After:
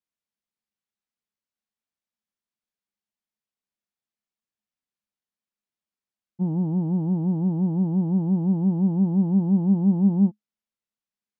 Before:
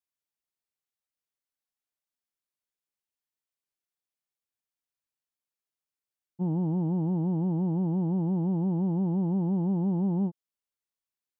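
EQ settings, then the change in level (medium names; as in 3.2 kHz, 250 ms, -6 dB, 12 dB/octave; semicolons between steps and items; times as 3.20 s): distance through air 57 m; peaking EQ 210 Hz +14 dB 0.29 oct; 0.0 dB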